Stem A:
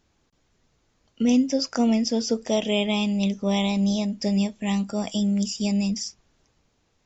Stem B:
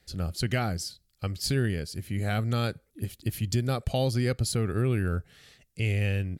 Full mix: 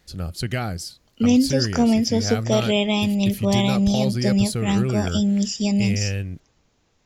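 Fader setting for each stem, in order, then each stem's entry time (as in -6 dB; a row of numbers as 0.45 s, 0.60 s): +3.0 dB, +2.0 dB; 0.00 s, 0.00 s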